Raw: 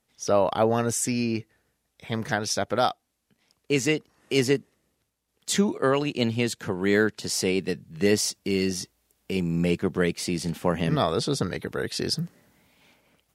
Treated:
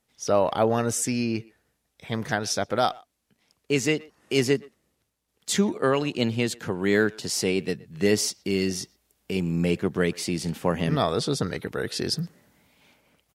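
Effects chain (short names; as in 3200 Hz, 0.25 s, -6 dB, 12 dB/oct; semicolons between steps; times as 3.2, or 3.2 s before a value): speakerphone echo 0.12 s, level -22 dB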